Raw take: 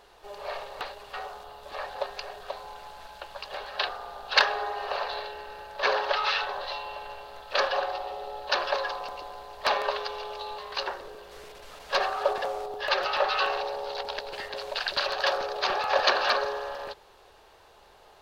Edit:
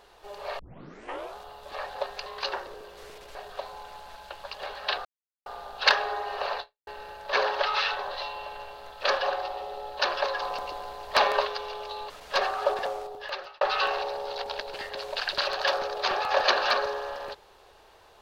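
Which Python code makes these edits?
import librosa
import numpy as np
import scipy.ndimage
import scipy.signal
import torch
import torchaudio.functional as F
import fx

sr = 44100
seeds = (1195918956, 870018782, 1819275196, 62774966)

y = fx.edit(x, sr, fx.tape_start(start_s=0.59, length_s=0.78),
    fx.insert_silence(at_s=3.96, length_s=0.41),
    fx.fade_out_span(start_s=5.1, length_s=0.27, curve='exp'),
    fx.clip_gain(start_s=8.92, length_s=1.03, db=3.5),
    fx.move(start_s=10.6, length_s=1.09, to_s=2.26),
    fx.fade_out_span(start_s=12.44, length_s=0.76), tone=tone)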